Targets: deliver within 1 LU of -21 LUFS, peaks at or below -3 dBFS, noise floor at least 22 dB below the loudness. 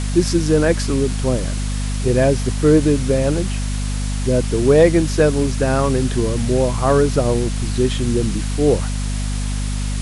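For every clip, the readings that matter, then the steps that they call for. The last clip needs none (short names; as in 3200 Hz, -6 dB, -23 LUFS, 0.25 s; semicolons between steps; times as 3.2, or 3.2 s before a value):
hum 50 Hz; harmonics up to 250 Hz; hum level -19 dBFS; noise floor -22 dBFS; noise floor target -40 dBFS; loudness -18.0 LUFS; peak -1.5 dBFS; loudness target -21.0 LUFS
-> de-hum 50 Hz, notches 5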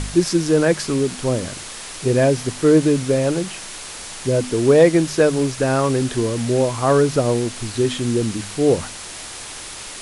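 hum none; noise floor -34 dBFS; noise floor target -41 dBFS
-> noise print and reduce 7 dB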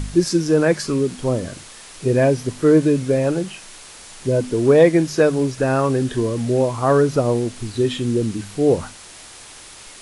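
noise floor -41 dBFS; loudness -18.5 LUFS; peak -1.5 dBFS; loudness target -21.0 LUFS
-> gain -2.5 dB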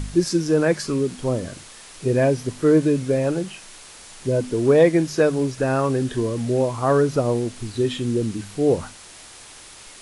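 loudness -21.0 LUFS; peak -4.0 dBFS; noise floor -44 dBFS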